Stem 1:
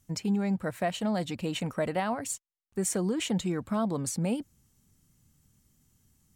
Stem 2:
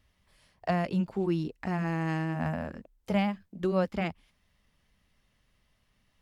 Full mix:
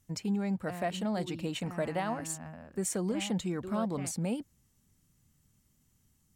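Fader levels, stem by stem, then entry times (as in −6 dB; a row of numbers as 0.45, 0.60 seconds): −3.5, −14.0 decibels; 0.00, 0.00 seconds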